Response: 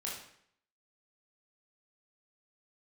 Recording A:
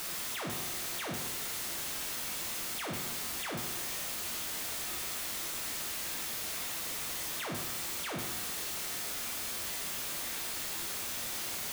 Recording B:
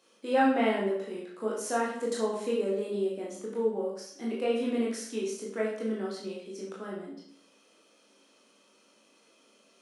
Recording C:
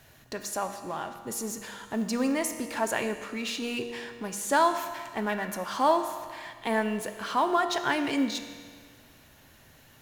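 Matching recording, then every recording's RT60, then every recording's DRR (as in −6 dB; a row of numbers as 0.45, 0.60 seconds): B; 1.1, 0.65, 1.8 seconds; −0.5, −4.5, 7.0 decibels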